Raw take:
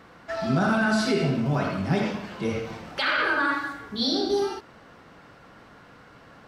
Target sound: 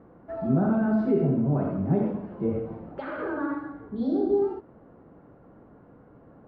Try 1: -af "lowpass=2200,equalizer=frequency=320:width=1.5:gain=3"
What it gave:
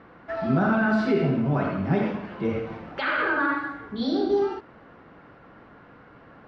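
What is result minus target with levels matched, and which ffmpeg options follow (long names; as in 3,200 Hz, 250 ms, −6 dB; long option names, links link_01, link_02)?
2,000 Hz band +13.0 dB
-af "lowpass=640,equalizer=frequency=320:width=1.5:gain=3"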